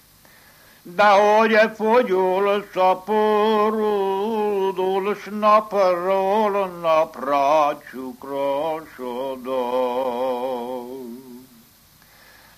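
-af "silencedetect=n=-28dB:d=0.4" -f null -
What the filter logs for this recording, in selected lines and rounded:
silence_start: 0.00
silence_end: 0.90 | silence_duration: 0.90
silence_start: 11.14
silence_end: 12.58 | silence_duration: 1.43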